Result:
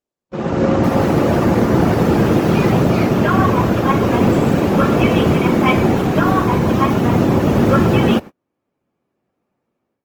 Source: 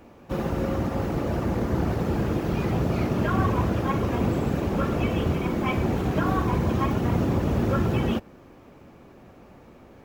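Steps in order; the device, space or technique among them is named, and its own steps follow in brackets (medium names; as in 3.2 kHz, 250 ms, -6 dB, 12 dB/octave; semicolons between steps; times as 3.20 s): video call (high-pass 120 Hz 12 dB/octave; level rider gain up to 16 dB; gate -25 dBFS, range -39 dB; Opus 24 kbps 48 kHz)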